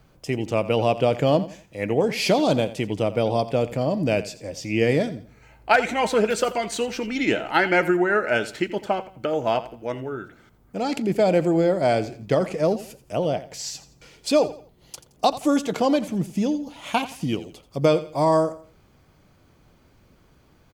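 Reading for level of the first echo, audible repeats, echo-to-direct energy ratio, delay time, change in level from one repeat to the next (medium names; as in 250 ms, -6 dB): -15.5 dB, 2, -15.0 dB, 85 ms, -10.0 dB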